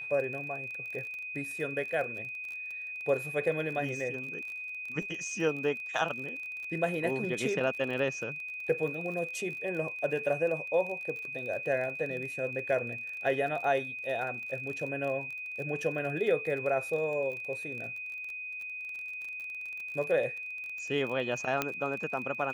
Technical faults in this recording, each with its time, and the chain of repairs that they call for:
crackle 31/s -38 dBFS
tone 2500 Hz -37 dBFS
21.62 pop -13 dBFS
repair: de-click; notch 2500 Hz, Q 30

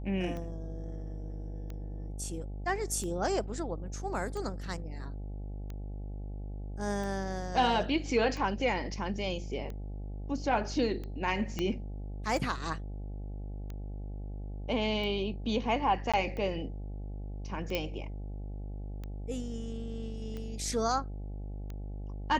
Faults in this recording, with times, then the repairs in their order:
buzz 50 Hz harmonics 17 -39 dBFS
tick 45 rpm -28 dBFS
11.59 pop -19 dBFS
16.12–16.14 gap 16 ms
17.75 pop -17 dBFS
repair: de-click; de-hum 50 Hz, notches 17; interpolate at 16.12, 16 ms

